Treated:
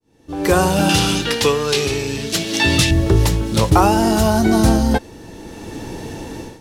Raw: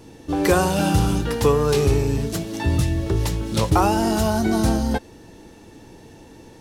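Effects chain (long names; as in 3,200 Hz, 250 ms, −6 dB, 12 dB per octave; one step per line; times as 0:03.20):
fade in at the beginning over 0.55 s
0:00.89–0:02.91: meter weighting curve D
automatic gain control gain up to 16 dB
level −1 dB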